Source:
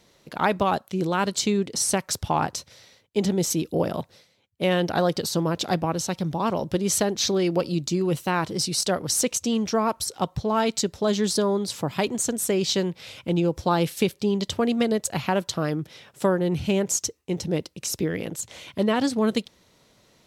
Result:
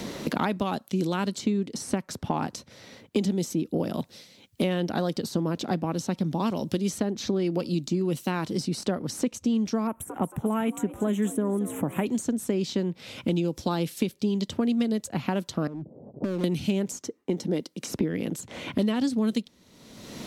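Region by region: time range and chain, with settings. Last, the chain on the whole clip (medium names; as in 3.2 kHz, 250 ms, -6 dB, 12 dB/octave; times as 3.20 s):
9.87–12.06 s: Butterworth band-stop 4.7 kHz, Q 0.65 + upward compressor, threshold -28 dBFS + frequency-shifting echo 224 ms, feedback 49%, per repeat +65 Hz, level -16 dB
15.67–16.44 s: steep low-pass 710 Hz + compression 16:1, threshold -31 dBFS + overload inside the chain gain 34.5 dB
17.01–17.88 s: high-pass 210 Hz + band-stop 2.6 kHz, Q 10
whole clip: peaking EQ 240 Hz +10.5 dB 1.1 oct; three bands compressed up and down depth 100%; trim -9 dB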